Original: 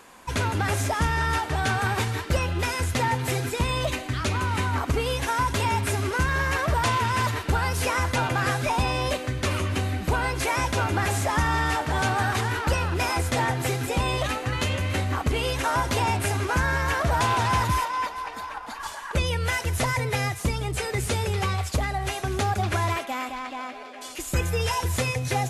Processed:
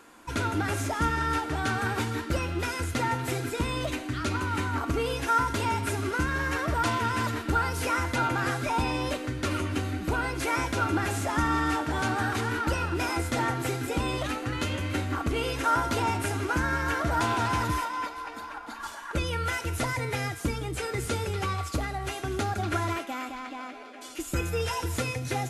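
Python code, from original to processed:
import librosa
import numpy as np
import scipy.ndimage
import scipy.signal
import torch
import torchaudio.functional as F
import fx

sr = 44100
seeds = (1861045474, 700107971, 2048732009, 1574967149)

y = fx.comb_fb(x, sr, f0_hz=230.0, decay_s=0.93, harmonics='all', damping=0.0, mix_pct=70)
y = fx.small_body(y, sr, hz=(310.0, 1400.0), ring_ms=55, db=12)
y = y * 10.0 ** (4.5 / 20.0)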